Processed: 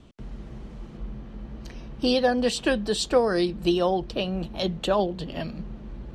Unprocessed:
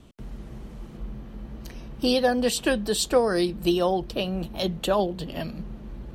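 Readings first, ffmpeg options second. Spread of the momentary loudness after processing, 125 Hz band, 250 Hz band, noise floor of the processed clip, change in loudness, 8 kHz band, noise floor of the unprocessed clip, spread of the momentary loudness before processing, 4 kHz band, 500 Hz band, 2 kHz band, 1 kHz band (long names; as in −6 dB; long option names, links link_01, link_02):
19 LU, 0.0 dB, 0.0 dB, −43 dBFS, 0.0 dB, −4.5 dB, −43 dBFS, 19 LU, −0.5 dB, 0.0 dB, 0.0 dB, 0.0 dB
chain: -af "lowpass=6500"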